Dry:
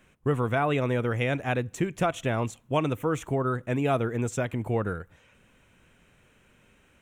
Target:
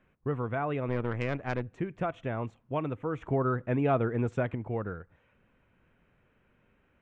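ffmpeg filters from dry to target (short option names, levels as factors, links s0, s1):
-filter_complex "[0:a]lowpass=2000,asettb=1/sr,asplit=3[s0][s1][s2];[s0]atrim=end=0.884[s3];[s1]atrim=start=0.88:end=1.7,asetpts=PTS-STARTPTS,afade=t=in:d=0.004:c=qsin,afade=t=out:st=0.816:d=0.004:c=qsin,aeval=exprs='0.211*(cos(1*acos(clip(val(0)/0.211,-1,1)))-cos(1*PI/2))+0.0376*(cos(4*acos(clip(val(0)/0.211,-1,1)))-cos(4*PI/2))':c=same[s4];[s2]atrim=start=1.696[s5];[s3][s4]acrossfade=d=0.004:c1=hsin:c2=qsin[s6];[s6][s5]acrossfade=d=0.004:c1=qsin:c2=hsin,asplit=3[s7][s8][s9];[s7]afade=t=out:st=3.21:d=0.02[s10];[s8]acontrast=32,afade=t=in:st=3.21:d=0.02,afade=t=out:st=4.54:d=0.02[s11];[s9]afade=t=in:st=4.54:d=0.02[s12];[s10][s11][s12]amix=inputs=3:normalize=0,volume=0.501"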